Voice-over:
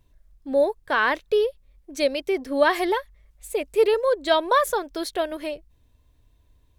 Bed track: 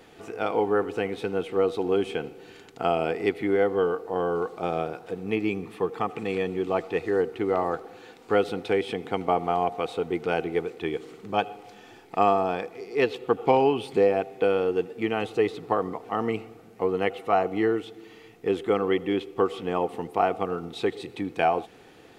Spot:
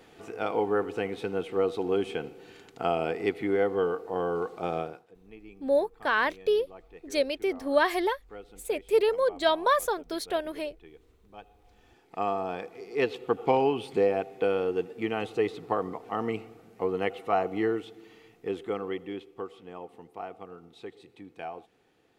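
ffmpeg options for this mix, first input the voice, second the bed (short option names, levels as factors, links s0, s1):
-filter_complex "[0:a]adelay=5150,volume=0.631[s0];[1:a]volume=6.31,afade=t=out:st=4.77:d=0.3:silence=0.105925,afade=t=in:st=11.52:d=1.45:silence=0.112202,afade=t=out:st=17.66:d=1.91:silence=0.237137[s1];[s0][s1]amix=inputs=2:normalize=0"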